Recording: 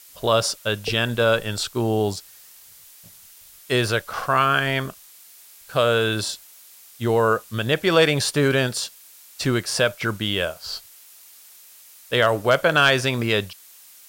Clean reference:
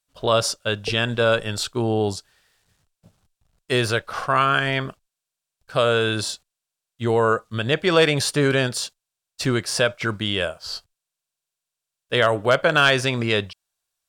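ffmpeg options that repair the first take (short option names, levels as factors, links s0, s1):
-af "afftdn=nr=30:nf=-48"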